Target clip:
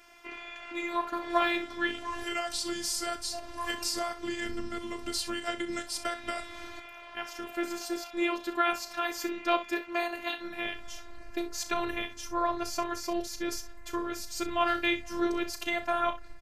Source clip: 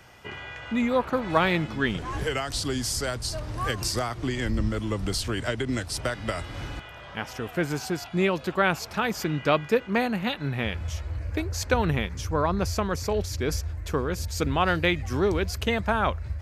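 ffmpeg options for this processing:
-af "lowshelf=f=270:g=-8.5,aecho=1:1:35|63:0.266|0.2,afftfilt=real='hypot(re,im)*cos(PI*b)':imag='0':win_size=512:overlap=0.75"

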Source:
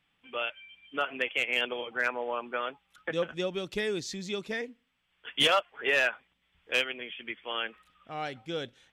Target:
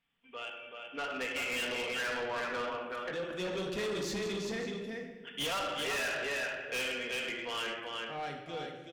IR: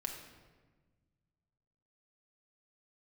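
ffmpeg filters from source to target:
-filter_complex "[0:a]asplit=3[a][b][c];[a]afade=t=out:st=2.61:d=0.02[d];[b]acompressor=threshold=-32dB:ratio=6,afade=t=in:st=2.61:d=0.02,afade=t=out:st=3.29:d=0.02[e];[c]afade=t=in:st=3.29:d=0.02[f];[d][e][f]amix=inputs=3:normalize=0,asettb=1/sr,asplit=3[g][h][i];[g]atrim=end=4.324[j];[h]atrim=start=4.32:end=5.52,asetpts=PTS-STARTPTS,afade=t=in:d=0.004:c=qsin,afade=t=out:st=1.196:d=0.004:c=qsin,equalizer=f=1.6k:w=0.31:g=-6[k];[i]atrim=start=5.516[l];[j][k]acrossfade=d=0.004:c1=hsin:c2=qsin[m];[m][l]acrossfade=d=0.004:c1=qsin:c2=hsin[n];[1:a]atrim=start_sample=2205,asetrate=48510,aresample=44100[o];[n][o]afir=irnorm=-1:irlink=0,dynaudnorm=f=310:g=7:m=9.5dB,aecho=1:1:379:0.501,asoftclip=type=tanh:threshold=-26dB,volume=-6dB"

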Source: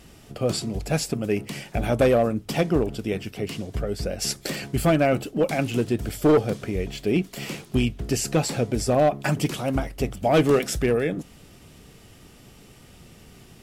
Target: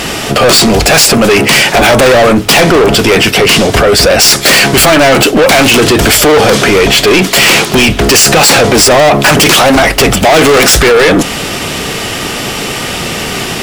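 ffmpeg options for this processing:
-filter_complex "[0:a]asplit=2[a][b];[b]highpass=f=720:p=1,volume=18dB,asoftclip=type=tanh:threshold=-12dB[c];[a][c]amix=inputs=2:normalize=0,lowpass=f=4.8k:p=1,volume=-6dB,apsyclip=30dB,volume=-3dB"

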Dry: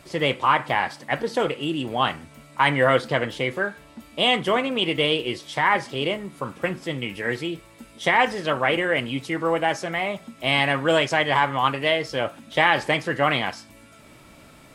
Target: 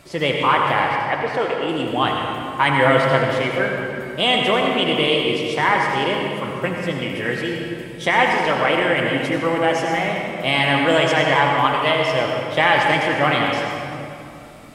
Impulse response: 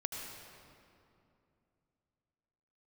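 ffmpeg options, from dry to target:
-filter_complex "[0:a]asettb=1/sr,asplit=3[a][b][c];[a]atrim=end=0.894[d];[b]atrim=start=0.89:end=1.69,asetpts=PTS-STARTPTS,afade=t=in:d=0.004:c=qsin,afade=t=out:st=0.796:d=0.004:c=qsin,bass=f=250:g=-12,treble=f=4k:g=-11[e];[c]atrim=start=1.686[f];[d][e]acrossfade=d=0.004:c1=hsin:c2=qsin[g];[g][f]acrossfade=d=0.004:c1=qsin:c2=hsin[h];[1:a]atrim=start_sample=2205[i];[h][i]afir=irnorm=-1:irlink=0,volume=3dB"

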